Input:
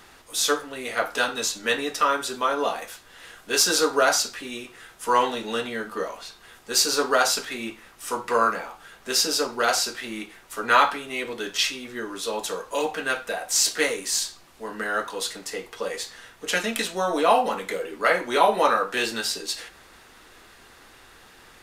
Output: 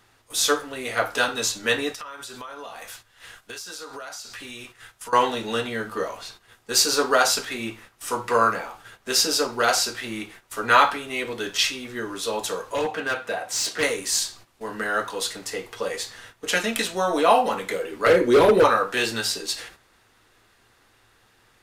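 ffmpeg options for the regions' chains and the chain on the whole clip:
ffmpeg -i in.wav -filter_complex "[0:a]asettb=1/sr,asplit=3[link_01][link_02][link_03];[link_01]atrim=end=1.924[link_04];[link_02]atrim=start=1.92:end=5.13,asetpts=PTS-STARTPTS,afade=type=in:duration=0.004:curve=qsin,afade=type=out:start_time=3.206:duration=0.004:curve=qsin,equalizer=frequency=330:width_type=o:width=2.1:gain=-6.5,acompressor=threshold=-35dB:ratio=12:attack=3.2:release=140:knee=1:detection=peak[link_05];[link_03]atrim=start=5.126[link_06];[link_04][link_05]acrossfade=duration=0.004:curve1=hsin:curve2=qsin[link_07];[link_07][link_06]acrossfade=duration=0.004:curve1=qsin:curve2=hsin,asettb=1/sr,asplit=3[link_08][link_09][link_10];[link_08]atrim=end=12.724[link_11];[link_09]atrim=start=12.72:end=13.83,asetpts=PTS-STARTPTS,afade=type=in:duration=0.004:curve=qsin,afade=type=out:start_time=1.106:duration=0.004:curve=qsin,highpass=110,aemphasis=mode=reproduction:type=cd,volume=21.5dB,asoftclip=hard,volume=-21.5dB[link_12];[link_10]atrim=start=13.826[link_13];[link_11][link_12]acrossfade=duration=0.004:curve1=hsin:curve2=qsin[link_14];[link_14][link_13]acrossfade=duration=0.004:curve1=qsin:curve2=hsin,asettb=1/sr,asplit=3[link_15][link_16][link_17];[link_15]atrim=end=18.064[link_18];[link_16]atrim=start=18.06:end=18.64,asetpts=PTS-STARTPTS,afade=type=in:duration=0.004:curve=qsin,afade=type=out:start_time=0.576:duration=0.004:curve=qsin,lowshelf=frequency=580:width_type=q:width=3:gain=7.5,asoftclip=type=hard:threshold=-13dB[link_19];[link_17]atrim=start=18.636[link_20];[link_18][link_19]acrossfade=duration=0.004:curve1=hsin:curve2=qsin[link_21];[link_21][link_20]acrossfade=duration=0.004:curve1=qsin:curve2=hsin,equalizer=frequency=110:width=6.6:gain=13,agate=range=-11dB:threshold=-46dB:ratio=16:detection=peak,volume=1.5dB" out.wav

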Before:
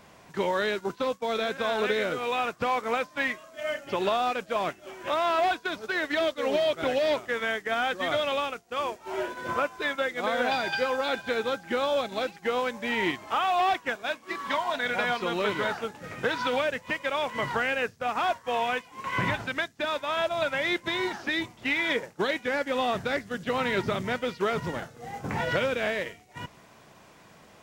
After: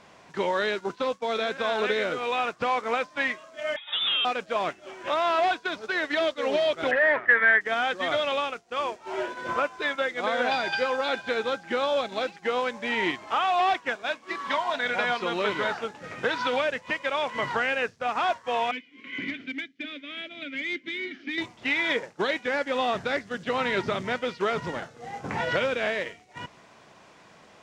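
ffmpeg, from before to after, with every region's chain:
ffmpeg -i in.wav -filter_complex "[0:a]asettb=1/sr,asplit=3[link_01][link_02][link_03];[link_01]atrim=end=3.764[link_04];[link_02]atrim=start=3.76:end=4.25,asetpts=PTS-STARTPTS,afade=type=in:duration=0.004:curve=qsin,afade=type=out:start_time=0.486:duration=0.004:curve=qsin,volume=23dB,asoftclip=hard,volume=-23dB,lowpass=frequency=3300:width_type=q:width=0.5098,lowpass=frequency=3300:width_type=q:width=0.6013,lowpass=frequency=3300:width_type=q:width=0.9,lowpass=frequency=3300:width_type=q:width=2.563,afreqshift=-3900[link_05];[link_03]atrim=start=4.246[link_06];[link_04][link_05]acrossfade=duration=0.004:curve1=hsin:curve2=qsin[link_07];[link_07][link_06]acrossfade=duration=0.004:curve1=qsin:curve2=hsin,asettb=1/sr,asplit=3[link_08][link_09][link_10];[link_08]atrim=end=6.914[link_11];[link_09]atrim=start=6.91:end=7.61,asetpts=PTS-STARTPTS,afade=type=in:duration=0.004:curve=qsin,afade=type=out:start_time=0.696:duration=0.004:curve=qsin,asoftclip=type=hard:threshold=-24.5dB,lowpass=frequency=1800:width_type=q:width=8[link_12];[link_10]atrim=start=7.606[link_13];[link_11][link_12]acrossfade=duration=0.004:curve1=hsin:curve2=qsin[link_14];[link_14][link_13]acrossfade=duration=0.004:curve1=qsin:curve2=hsin,asettb=1/sr,asplit=3[link_15][link_16][link_17];[link_15]atrim=end=18.714[link_18];[link_16]atrim=start=18.71:end=21.38,asetpts=PTS-STARTPTS,afade=type=in:duration=0.004:curve=qsin,afade=type=out:start_time=2.666:duration=0.004:curve=qsin,asplit=3[link_19][link_20][link_21];[link_19]bandpass=frequency=270:width_type=q:width=8,volume=0dB[link_22];[link_20]bandpass=frequency=2290:width_type=q:width=8,volume=-6dB[link_23];[link_21]bandpass=frequency=3010:width_type=q:width=8,volume=-9dB[link_24];[link_22][link_23][link_24]amix=inputs=3:normalize=0,lowshelf=frequency=490:gain=9,asplit=2[link_25][link_26];[link_26]highpass=frequency=720:poles=1,volume=13dB,asoftclip=type=tanh:threshold=-21dB[link_27];[link_25][link_27]amix=inputs=2:normalize=0,lowpass=frequency=6900:poles=1,volume=-6dB[link_28];[link_17]atrim=start=21.376[link_29];[link_18][link_28]acrossfade=duration=0.004:curve1=hsin:curve2=qsin[link_30];[link_30][link_29]acrossfade=duration=0.004:curve1=qsin:curve2=hsin,lowpass=7000,lowshelf=frequency=170:gain=-8,volume=1.5dB" out.wav

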